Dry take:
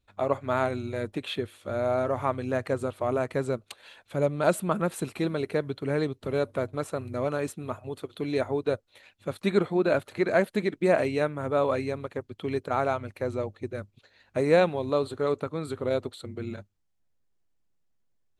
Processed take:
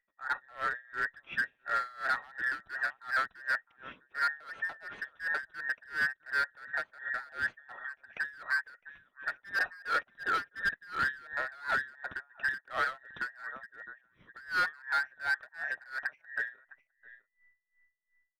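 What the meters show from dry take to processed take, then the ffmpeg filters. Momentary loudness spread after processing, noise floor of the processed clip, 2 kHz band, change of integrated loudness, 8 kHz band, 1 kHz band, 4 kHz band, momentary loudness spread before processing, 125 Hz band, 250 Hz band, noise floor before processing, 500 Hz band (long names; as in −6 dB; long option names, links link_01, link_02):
11 LU, −79 dBFS, +7.0 dB, −5.5 dB, below −10 dB, −3.5 dB, −3.5 dB, 12 LU, −27.0 dB, −26.5 dB, −71 dBFS, −24.0 dB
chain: -filter_complex "[0:a]afftfilt=real='real(if(between(b,1,1012),(2*floor((b-1)/92)+1)*92-b,b),0)':imag='imag(if(between(b,1,1012),(2*floor((b-1)/92)+1)*92-b,b),0)*if(between(b,1,1012),-1,1)':win_size=2048:overlap=0.75,dynaudnorm=framelen=120:gausssize=13:maxgain=7dB,asplit=2[link_01][link_02];[link_02]aecho=0:1:658:0.0841[link_03];[link_01][link_03]amix=inputs=2:normalize=0,asoftclip=type=tanh:threshold=-18.5dB,lowpass=frequency=2800:width=0.5412,lowpass=frequency=2800:width=1.3066,asoftclip=type=hard:threshold=-21dB,aeval=exprs='val(0)*pow(10,-25*(0.5-0.5*cos(2*PI*2.8*n/s))/20)':channel_layout=same,volume=-3dB"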